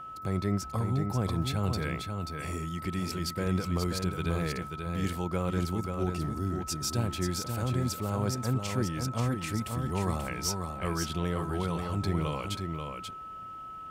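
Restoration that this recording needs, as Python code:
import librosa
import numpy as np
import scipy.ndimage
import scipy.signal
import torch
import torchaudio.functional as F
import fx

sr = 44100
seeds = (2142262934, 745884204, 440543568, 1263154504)

y = fx.fix_declip(x, sr, threshold_db=-17.5)
y = fx.notch(y, sr, hz=1300.0, q=30.0)
y = fx.fix_echo_inverse(y, sr, delay_ms=535, level_db=-5.5)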